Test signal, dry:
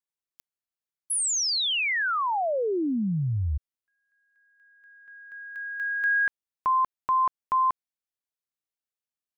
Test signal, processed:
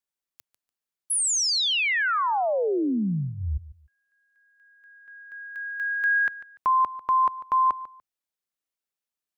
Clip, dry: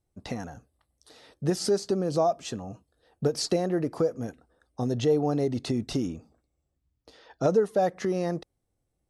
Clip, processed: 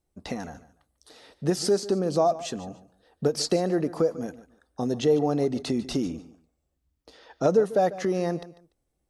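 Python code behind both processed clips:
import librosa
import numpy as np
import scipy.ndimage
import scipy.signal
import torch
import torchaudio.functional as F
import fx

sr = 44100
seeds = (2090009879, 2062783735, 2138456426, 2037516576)

p1 = fx.peak_eq(x, sr, hz=110.0, db=-14.5, octaves=0.35)
p2 = p1 + fx.echo_feedback(p1, sr, ms=146, feedback_pct=23, wet_db=-16.5, dry=0)
y = F.gain(torch.from_numpy(p2), 2.0).numpy()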